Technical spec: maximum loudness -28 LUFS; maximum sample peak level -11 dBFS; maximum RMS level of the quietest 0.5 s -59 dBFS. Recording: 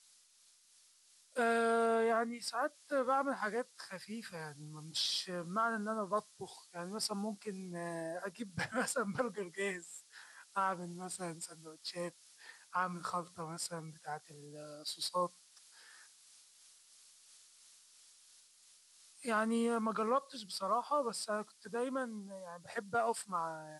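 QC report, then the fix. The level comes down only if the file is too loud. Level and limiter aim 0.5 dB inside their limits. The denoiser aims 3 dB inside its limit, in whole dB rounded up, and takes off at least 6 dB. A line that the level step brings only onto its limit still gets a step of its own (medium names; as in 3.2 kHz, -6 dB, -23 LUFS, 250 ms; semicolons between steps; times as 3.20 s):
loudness -37.5 LUFS: pass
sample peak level -22.0 dBFS: pass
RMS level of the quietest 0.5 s -67 dBFS: pass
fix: none needed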